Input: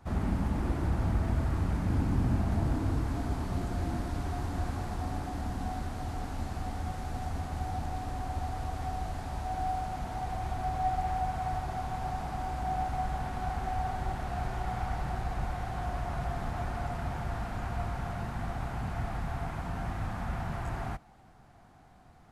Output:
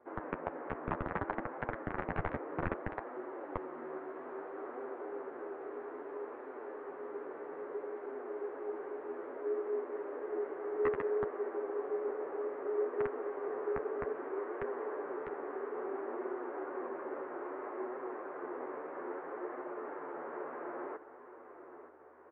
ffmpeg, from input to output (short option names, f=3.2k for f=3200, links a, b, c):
-filter_complex "[0:a]asplit=2[a][b];[b]aecho=0:1:924|1848|2772|3696|4620:0.237|0.126|0.0666|0.0353|0.0187[c];[a][c]amix=inputs=2:normalize=0,afftfilt=real='re*(1-between(b*sr/4096,180,560))':imag='im*(1-between(b*sr/4096,180,560))':win_size=4096:overlap=0.75,aeval=exprs='val(0)+0.00126*(sin(2*PI*50*n/s)+sin(2*PI*2*50*n/s)/2+sin(2*PI*3*50*n/s)/3+sin(2*PI*4*50*n/s)/4+sin(2*PI*5*50*n/s)/5)':c=same,aresample=11025,aeval=exprs='(mod(11.9*val(0)+1,2)-1)/11.9':c=same,aresample=44100,highpass=f=350:t=q:w=0.5412,highpass=f=350:t=q:w=1.307,lowpass=f=2.2k:t=q:w=0.5176,lowpass=f=2.2k:t=q:w=0.7071,lowpass=f=2.2k:t=q:w=1.932,afreqshift=-330,flanger=delay=7.6:depth=6.1:regen=-16:speed=0.61:shape=triangular,volume=2.5dB"